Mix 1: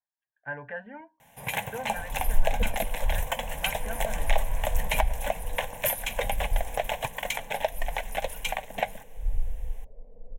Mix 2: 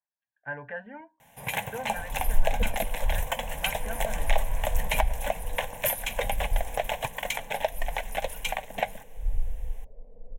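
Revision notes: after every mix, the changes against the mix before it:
no change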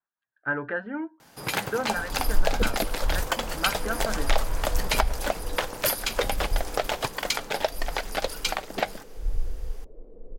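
speech +3.0 dB; master: remove static phaser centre 1.3 kHz, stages 6

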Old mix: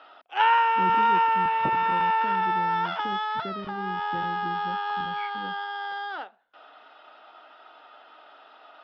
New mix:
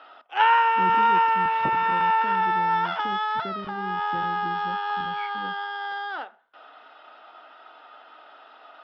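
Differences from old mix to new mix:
speech: remove low-pass 3.2 kHz; background: send on

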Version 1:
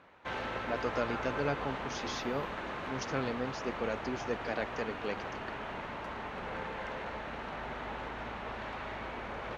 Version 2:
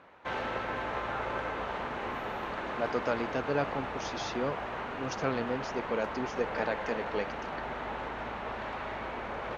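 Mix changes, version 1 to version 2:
speech: entry +2.10 s; master: add peaking EQ 700 Hz +4 dB 2.9 oct

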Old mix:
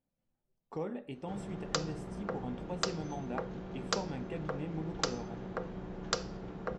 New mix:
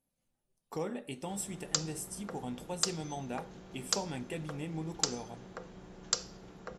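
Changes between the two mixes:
background -9.0 dB; master: remove tape spacing loss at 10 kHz 26 dB

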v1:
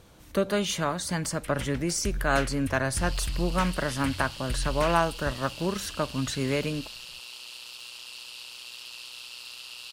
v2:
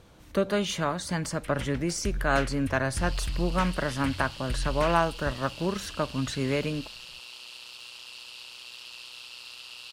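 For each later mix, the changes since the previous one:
master: add treble shelf 7.1 kHz -8 dB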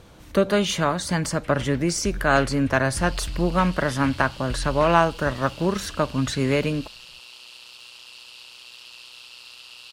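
speech +6.0 dB; first sound: add distance through air 71 m

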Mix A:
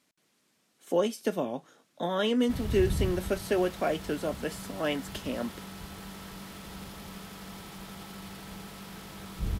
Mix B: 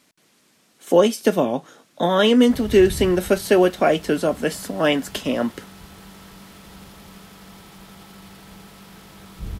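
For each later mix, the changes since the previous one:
speech +11.5 dB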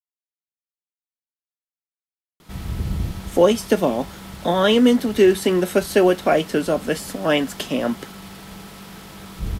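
speech: entry +2.45 s; background +5.0 dB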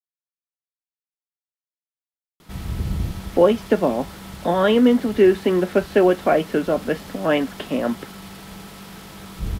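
speech: add band-pass 120–2300 Hz

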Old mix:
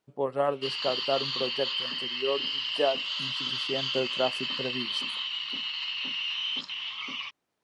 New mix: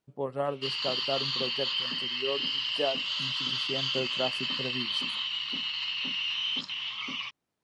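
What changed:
speech -4.5 dB; master: add tone controls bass +7 dB, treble +2 dB

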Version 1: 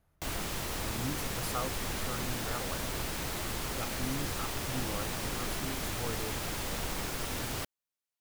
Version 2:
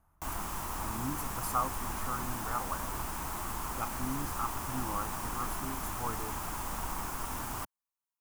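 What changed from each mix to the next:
speech +4.0 dB; master: add graphic EQ 125/500/1000/2000/4000 Hz -6/-11/+10/-6/-11 dB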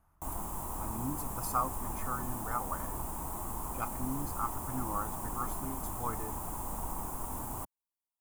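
background: add high-order bell 2.8 kHz -12.5 dB 2.5 oct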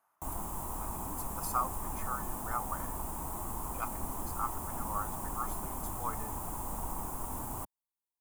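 speech: add high-pass 590 Hz 12 dB/octave

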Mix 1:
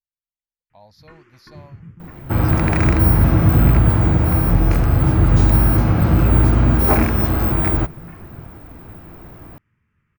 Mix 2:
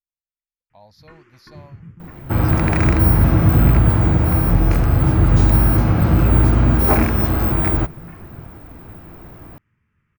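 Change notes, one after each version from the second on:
no change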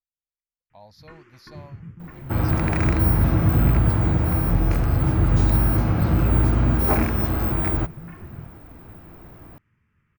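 second sound -5.0 dB

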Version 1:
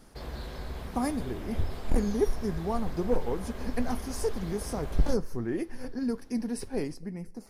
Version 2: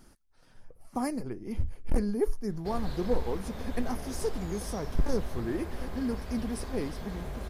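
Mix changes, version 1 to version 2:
background: entry +2.50 s; reverb: off

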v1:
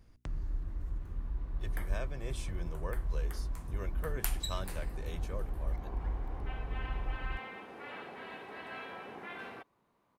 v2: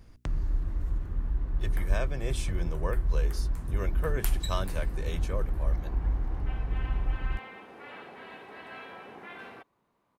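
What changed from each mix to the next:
speech +7.5 dB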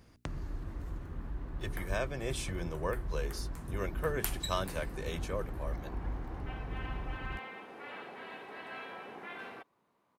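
master: add high-pass 150 Hz 6 dB/octave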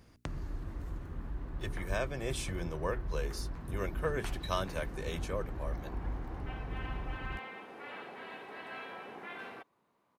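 second sound: add distance through air 230 m

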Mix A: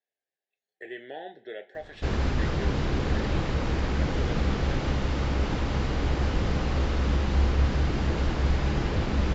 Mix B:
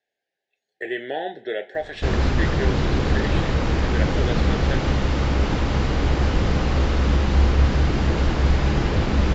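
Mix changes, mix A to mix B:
speech +11.5 dB; background +6.0 dB

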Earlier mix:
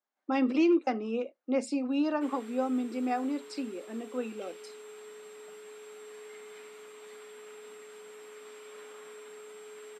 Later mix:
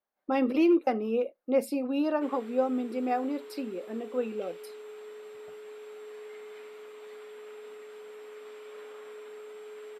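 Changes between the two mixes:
speech: remove elliptic band-pass 250–7200 Hz; master: add graphic EQ 125/500/8000 Hz -11/+5/-9 dB

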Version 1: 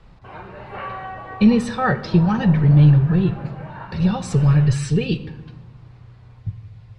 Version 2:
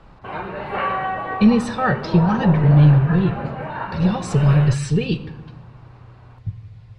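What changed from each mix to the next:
background +8.5 dB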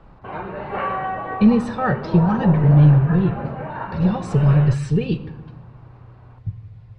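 master: add treble shelf 2.3 kHz -10 dB

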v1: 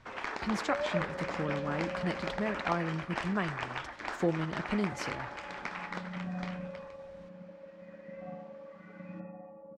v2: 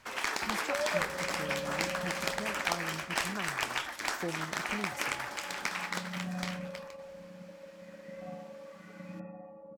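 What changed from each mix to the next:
speech -8.0 dB; first sound: add treble shelf 2.5 kHz +11 dB; master: remove distance through air 98 m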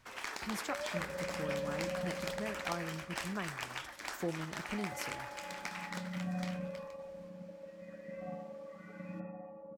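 first sound -8.5 dB

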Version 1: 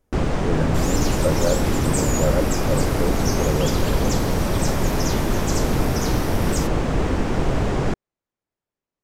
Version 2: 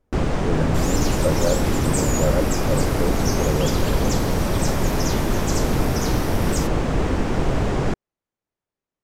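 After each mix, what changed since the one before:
speech: add treble shelf 4 kHz -10.5 dB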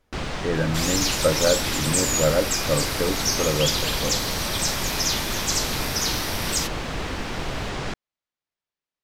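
first sound -10.0 dB; second sound -4.5 dB; master: add FFT filter 400 Hz 0 dB, 4.1 kHz +15 dB, 7.2 kHz +9 dB

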